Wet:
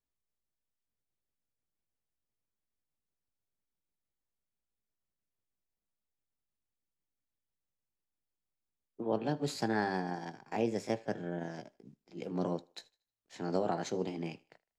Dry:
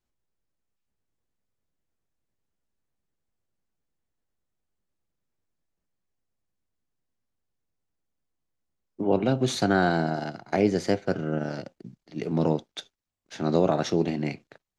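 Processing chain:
pitch shift by two crossfaded delay taps +2 semitones
feedback echo with a high-pass in the loop 78 ms, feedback 35%, high-pass 320 Hz, level −23.5 dB
level −9 dB

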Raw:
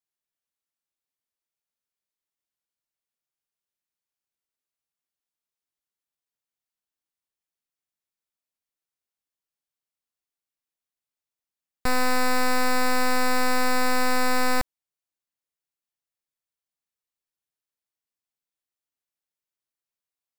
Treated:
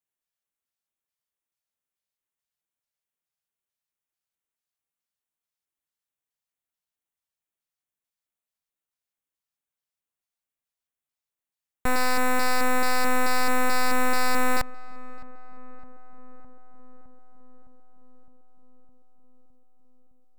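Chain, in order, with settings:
auto-filter notch square 2.3 Hz 330–4,800 Hz
feedback echo with a low-pass in the loop 611 ms, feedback 76%, low-pass 1,400 Hz, level −18.5 dB

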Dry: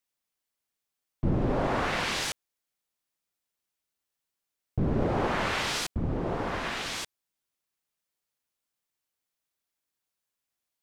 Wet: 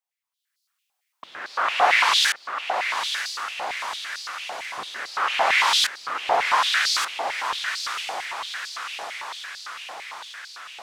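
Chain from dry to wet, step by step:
automatic gain control gain up to 14.5 dB
feedback delay with all-pass diffusion 943 ms, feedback 66%, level −7 dB
high-pass on a step sequencer 8.9 Hz 760–4,500 Hz
level −6.5 dB

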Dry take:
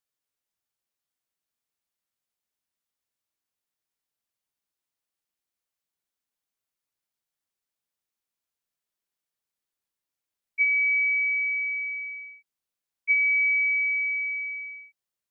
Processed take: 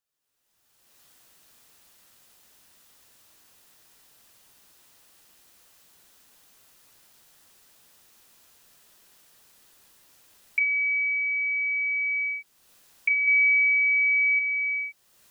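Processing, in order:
camcorder AGC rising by 30 dB per second
notch filter 2,200 Hz, Q 17
0:13.27–0:14.39: comb filter 3.5 ms, depth 77%

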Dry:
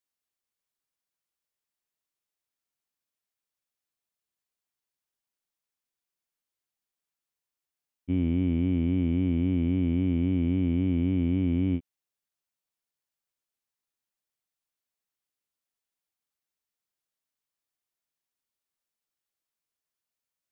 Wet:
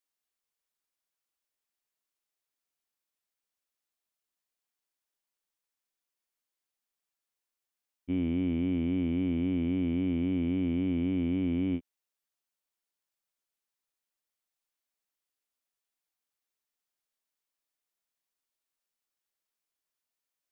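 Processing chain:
parametric band 110 Hz −11 dB 1.3 octaves

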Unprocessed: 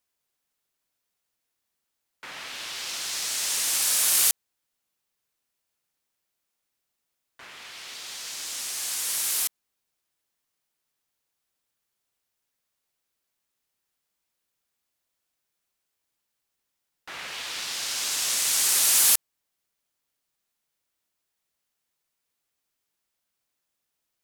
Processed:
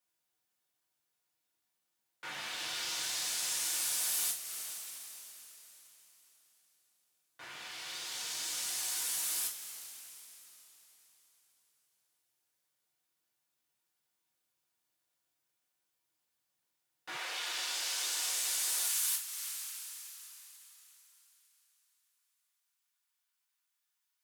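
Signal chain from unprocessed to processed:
coupled-rooms reverb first 0.29 s, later 4 s, from −22 dB, DRR −2 dB
downward compressor 3 to 1, threshold −27 dBFS, peak gain reduction 12 dB
high-pass filter 80 Hz 24 dB per octave, from 0:17.17 350 Hz, from 0:18.89 980 Hz
level −6.5 dB

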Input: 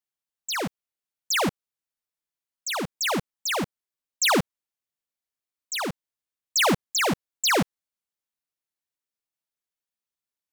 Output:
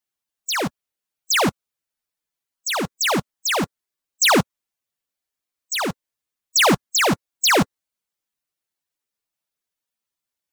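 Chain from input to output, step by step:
spectral magnitudes quantised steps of 15 dB
level +5.5 dB

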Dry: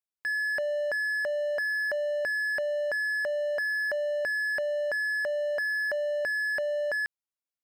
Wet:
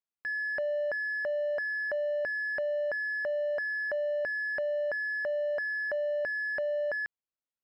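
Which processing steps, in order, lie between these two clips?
head-to-tape spacing loss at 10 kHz 22 dB

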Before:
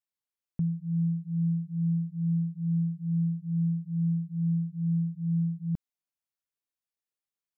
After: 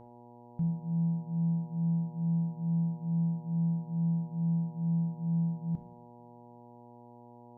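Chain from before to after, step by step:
hum with harmonics 120 Hz, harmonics 8, −47 dBFS −2 dB per octave
coupled-rooms reverb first 0.71 s, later 2.6 s, from −24 dB, DRR 6.5 dB
level −5 dB

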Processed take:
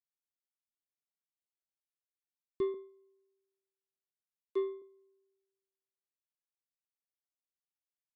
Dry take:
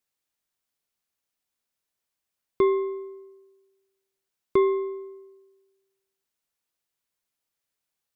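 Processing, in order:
0:02.74–0:04.82: Butterworth high-pass 340 Hz 48 dB per octave
flat-topped bell 1,100 Hz −11 dB 2.7 octaves
soft clipping −15 dBFS, distortion −26 dB
expander for the loud parts 2.5 to 1, over −35 dBFS
level −6 dB

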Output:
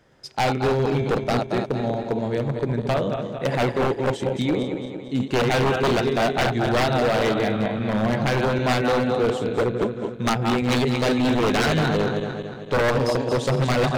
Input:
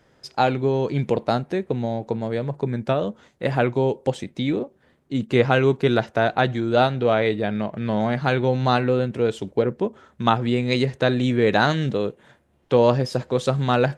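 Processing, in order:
feedback delay that plays each chunk backwards 113 ms, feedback 72%, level −6 dB
wave folding −14.5 dBFS

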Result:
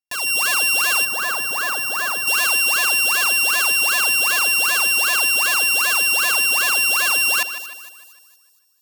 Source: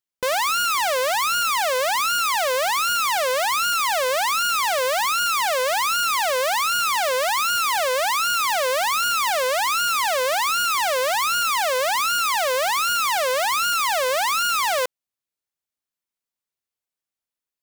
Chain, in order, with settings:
samples sorted by size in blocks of 32 samples
high-shelf EQ 4,100 Hz +7 dB
automatic gain control gain up to 16 dB
echo with a time of its own for lows and highs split 2,400 Hz, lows 304 ms, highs 465 ms, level −12 dB
gain on a spectral selection 0:02.09–0:04.54, 1,000–7,400 Hz −7 dB
wrong playback speed 7.5 ips tape played at 15 ips
level −6.5 dB

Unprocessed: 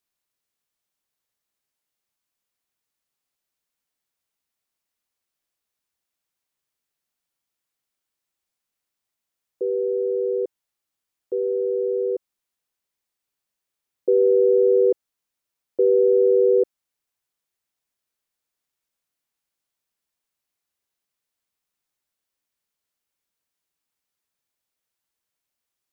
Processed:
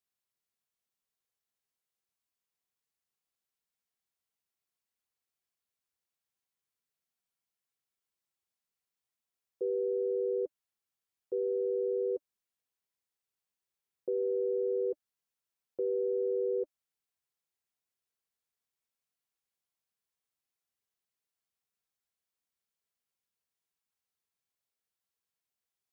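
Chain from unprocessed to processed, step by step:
brickwall limiter −18.5 dBFS, peak gain reduction 8 dB
notch comb filter 300 Hz
level −6.5 dB

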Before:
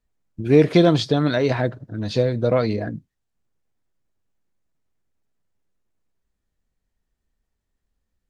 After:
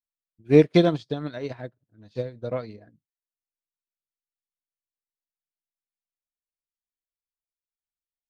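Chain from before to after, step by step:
expander for the loud parts 2.5 to 1, over −33 dBFS

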